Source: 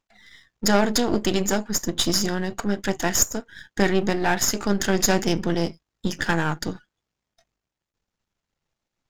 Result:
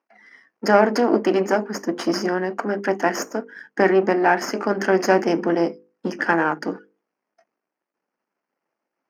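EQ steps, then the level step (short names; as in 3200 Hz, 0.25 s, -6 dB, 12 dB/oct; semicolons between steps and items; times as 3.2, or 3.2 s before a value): running mean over 12 samples; HPF 250 Hz 24 dB/oct; notches 50/100/150/200/250/300/350/400/450/500 Hz; +7.0 dB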